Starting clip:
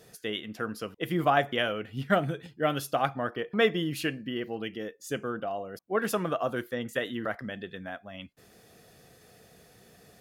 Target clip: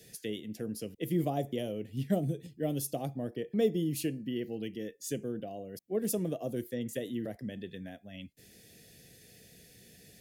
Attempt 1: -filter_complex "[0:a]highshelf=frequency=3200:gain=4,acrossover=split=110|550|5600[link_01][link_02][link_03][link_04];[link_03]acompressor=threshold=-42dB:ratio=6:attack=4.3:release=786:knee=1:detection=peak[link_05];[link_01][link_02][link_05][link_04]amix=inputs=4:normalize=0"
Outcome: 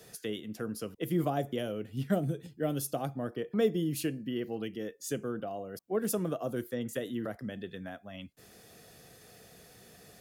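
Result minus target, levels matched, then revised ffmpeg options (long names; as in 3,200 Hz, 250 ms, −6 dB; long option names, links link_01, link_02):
1,000 Hz band +3.0 dB
-filter_complex "[0:a]highshelf=frequency=3200:gain=4,acrossover=split=110|550|5600[link_01][link_02][link_03][link_04];[link_03]acompressor=threshold=-42dB:ratio=6:attack=4.3:release=786:knee=1:detection=peak,asuperstop=centerf=840:order=8:qfactor=0.62[link_05];[link_01][link_02][link_05][link_04]amix=inputs=4:normalize=0"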